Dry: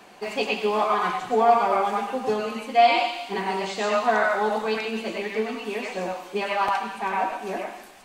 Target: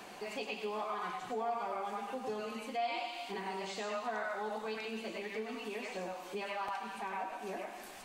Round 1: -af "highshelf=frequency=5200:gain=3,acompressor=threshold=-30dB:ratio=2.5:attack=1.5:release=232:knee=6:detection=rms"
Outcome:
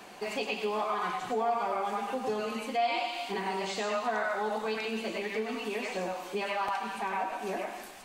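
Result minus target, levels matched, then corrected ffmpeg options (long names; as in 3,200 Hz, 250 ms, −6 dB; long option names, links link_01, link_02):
downward compressor: peak gain reduction −7 dB
-af "highshelf=frequency=5200:gain=3,acompressor=threshold=-41.5dB:ratio=2.5:attack=1.5:release=232:knee=6:detection=rms"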